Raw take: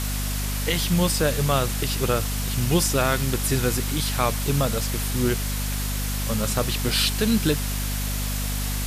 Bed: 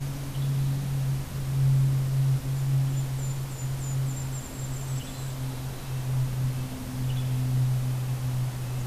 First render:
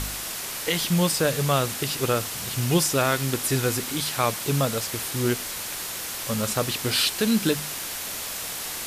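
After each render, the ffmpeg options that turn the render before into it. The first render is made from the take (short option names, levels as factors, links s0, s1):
-af "bandreject=f=50:t=h:w=4,bandreject=f=100:t=h:w=4,bandreject=f=150:t=h:w=4,bandreject=f=200:t=h:w=4,bandreject=f=250:t=h:w=4"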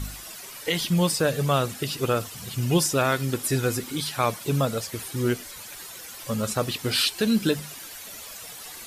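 -af "afftdn=nr=12:nf=-33"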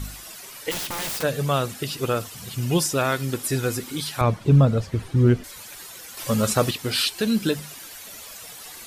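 -filter_complex "[0:a]asplit=3[s0][s1][s2];[s0]afade=t=out:st=0.7:d=0.02[s3];[s1]aeval=exprs='(mod(15.8*val(0)+1,2)-1)/15.8':c=same,afade=t=in:st=0.7:d=0.02,afade=t=out:st=1.22:d=0.02[s4];[s2]afade=t=in:st=1.22:d=0.02[s5];[s3][s4][s5]amix=inputs=3:normalize=0,asettb=1/sr,asplit=3[s6][s7][s8];[s6]atrim=end=4.214[s9];[s7]atrim=start=4.21:end=5.44,asetpts=PTS-STARTPTS,afade=t=in:d=0.004:c=qsin,afade=t=out:st=1.226:d=0.004:c=qsin,aemphasis=mode=reproduction:type=riaa[s10];[s8]atrim=start=5.436[s11];[s9][s10]acrossfade=d=0.004:c1=hsin:c2=qsin[s12];[s12][s11]acrossfade=d=0.004:c1=qsin:c2=hsin,asettb=1/sr,asplit=3[s13][s14][s15];[s13]atrim=end=6.174[s16];[s14]atrim=start=6.17:end=6.71,asetpts=PTS-STARTPTS,afade=t=in:d=0.004:c=qsin,afade=t=out:st=0.536:d=0.004:c=qsin,acontrast=43[s17];[s15]atrim=start=6.706[s18];[s16][s17]acrossfade=d=0.004:c1=hsin:c2=qsin[s19];[s19][s18]acrossfade=d=0.004:c1=qsin:c2=hsin"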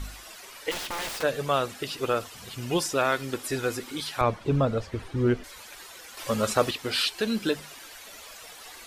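-af "lowpass=f=3800:p=1,equalizer=f=140:t=o:w=1.6:g=-11.5"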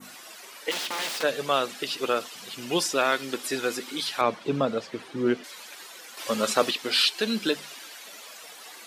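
-af "highpass=f=180:w=0.5412,highpass=f=180:w=1.3066,adynamicequalizer=threshold=0.00631:dfrequency=3800:dqfactor=0.73:tfrequency=3800:tqfactor=0.73:attack=5:release=100:ratio=0.375:range=2.5:mode=boostabove:tftype=bell"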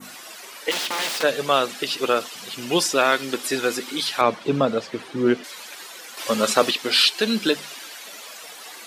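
-af "volume=1.78,alimiter=limit=0.794:level=0:latency=1"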